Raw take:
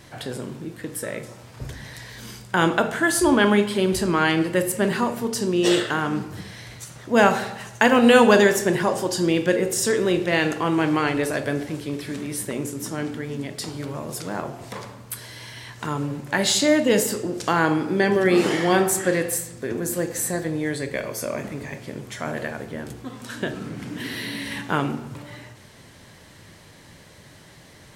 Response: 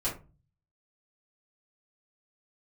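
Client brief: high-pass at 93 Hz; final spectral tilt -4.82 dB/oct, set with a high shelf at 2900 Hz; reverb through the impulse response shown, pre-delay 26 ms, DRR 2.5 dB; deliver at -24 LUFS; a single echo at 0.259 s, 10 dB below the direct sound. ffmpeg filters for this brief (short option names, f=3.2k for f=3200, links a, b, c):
-filter_complex "[0:a]highpass=93,highshelf=f=2.9k:g=-7.5,aecho=1:1:259:0.316,asplit=2[a][b];[1:a]atrim=start_sample=2205,adelay=26[c];[b][c]afir=irnorm=-1:irlink=0,volume=-8.5dB[d];[a][d]amix=inputs=2:normalize=0,volume=-3.5dB"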